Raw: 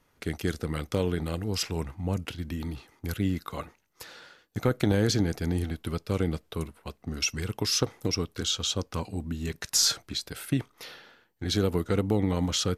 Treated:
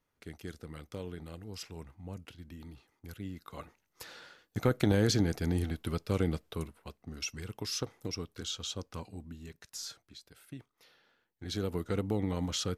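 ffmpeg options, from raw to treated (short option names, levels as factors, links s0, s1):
-af "volume=3.16,afade=t=in:st=3.37:d=0.71:silence=0.266073,afade=t=out:st=6.3:d=0.78:silence=0.446684,afade=t=out:st=8.96:d=0.75:silence=0.334965,afade=t=in:st=10.93:d=0.98:silence=0.237137"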